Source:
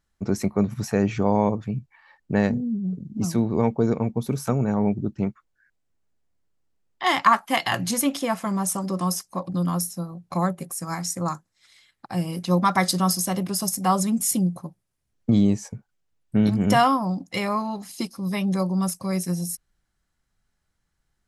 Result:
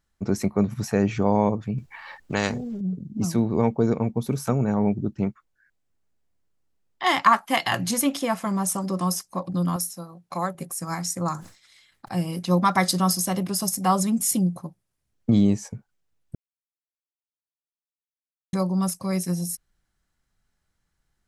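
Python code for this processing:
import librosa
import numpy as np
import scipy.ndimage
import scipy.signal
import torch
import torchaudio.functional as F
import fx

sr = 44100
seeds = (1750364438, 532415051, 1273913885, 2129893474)

y = fx.spectral_comp(x, sr, ratio=2.0, at=(1.78, 2.81))
y = fx.low_shelf(y, sr, hz=280.0, db=-12.0, at=(9.76, 10.55))
y = fx.sustainer(y, sr, db_per_s=120.0, at=(11.31, 12.19))
y = fx.edit(y, sr, fx.silence(start_s=16.35, length_s=2.18), tone=tone)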